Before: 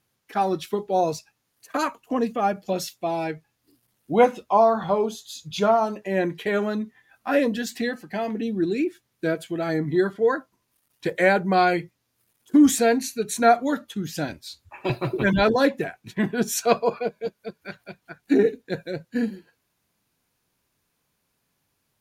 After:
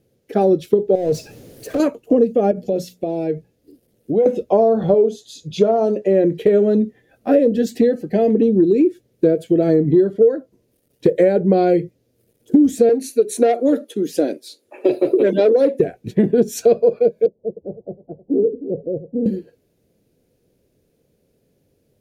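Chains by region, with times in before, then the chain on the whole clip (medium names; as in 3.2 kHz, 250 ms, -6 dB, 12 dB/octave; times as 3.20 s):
0.95–1.80 s: compression 12:1, threshold -33 dBFS + power-law waveshaper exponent 0.5 + tape noise reduction on one side only decoder only
2.51–4.26 s: hum notches 60/120/180/240 Hz + compression 3:1, threshold -34 dBFS
4.94–6.24 s: low-pass 9.8 kHz + bass shelf 180 Hz -8.5 dB
12.89–15.80 s: high-pass 280 Hz 24 dB/octave + peaking EQ 9.9 kHz +9 dB 0.24 oct + transformer saturation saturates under 1.6 kHz
17.26–19.26 s: steep low-pass 920 Hz 48 dB/octave + delay 304 ms -24 dB + compression 2:1, threshold -43 dBFS
whole clip: resonant low shelf 710 Hz +12.5 dB, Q 3; compression 6:1, threshold -11 dBFS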